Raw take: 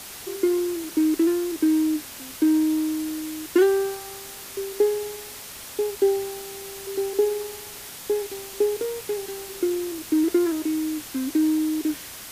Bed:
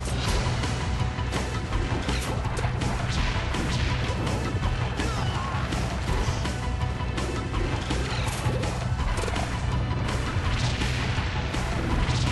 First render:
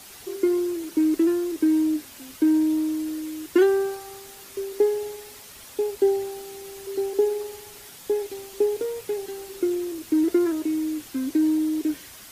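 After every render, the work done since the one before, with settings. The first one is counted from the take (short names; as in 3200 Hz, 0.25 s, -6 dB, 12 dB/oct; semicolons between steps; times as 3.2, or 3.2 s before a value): denoiser 7 dB, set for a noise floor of -40 dBFS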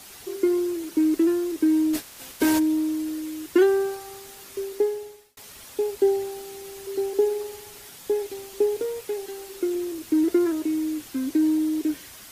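1.93–2.58 spectral limiter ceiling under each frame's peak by 18 dB; 4.65–5.37 fade out; 9–9.75 bell 110 Hz -6.5 dB 2.3 oct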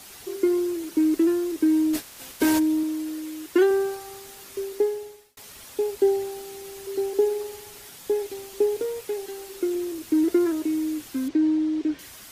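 2.83–3.71 tone controls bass -6 dB, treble -1 dB; 11.28–11.99 air absorption 140 m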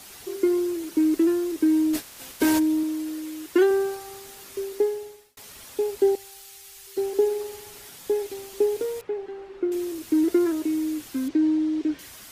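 6.15–6.97 passive tone stack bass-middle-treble 10-0-10; 9.01–9.72 LPF 1800 Hz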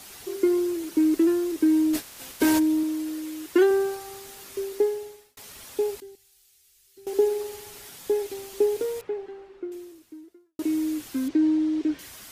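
6–7.07 passive tone stack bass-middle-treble 6-0-2; 9.03–10.59 fade out quadratic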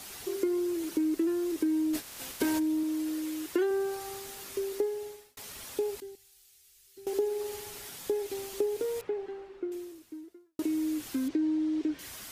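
compressor 2.5:1, threshold -30 dBFS, peak gain reduction 10 dB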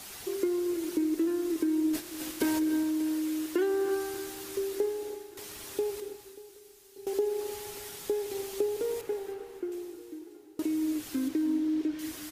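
feedback echo 0.587 s, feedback 58%, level -18.5 dB; non-linear reverb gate 0.35 s rising, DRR 8.5 dB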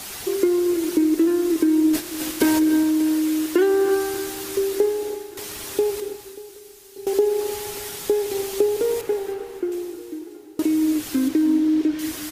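gain +10 dB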